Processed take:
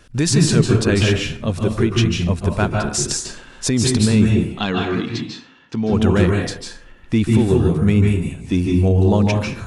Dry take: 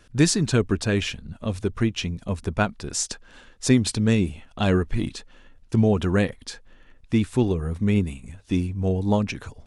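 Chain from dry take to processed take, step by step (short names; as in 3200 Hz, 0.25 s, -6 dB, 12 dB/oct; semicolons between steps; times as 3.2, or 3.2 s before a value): limiter -14 dBFS, peak gain reduction 9 dB; 4.45–5.93 speaker cabinet 200–5900 Hz, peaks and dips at 360 Hz -6 dB, 590 Hz -10 dB, 3700 Hz +3 dB; reverb RT60 0.55 s, pre-delay 0.135 s, DRR 0.5 dB; gain +5.5 dB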